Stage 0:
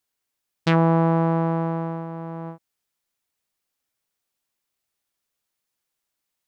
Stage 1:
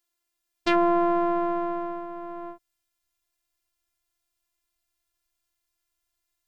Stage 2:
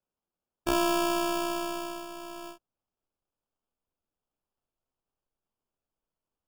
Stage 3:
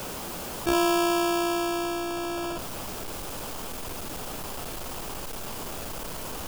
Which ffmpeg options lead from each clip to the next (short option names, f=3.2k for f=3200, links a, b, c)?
-af "asubboost=boost=6.5:cutoff=120,afftfilt=real='hypot(re,im)*cos(PI*b)':imag='0':win_size=512:overlap=0.75,volume=3.5dB"
-af "acrusher=samples=22:mix=1:aa=0.000001,volume=-5dB"
-af "aeval=exprs='val(0)+0.5*0.0398*sgn(val(0))':c=same,volume=1dB"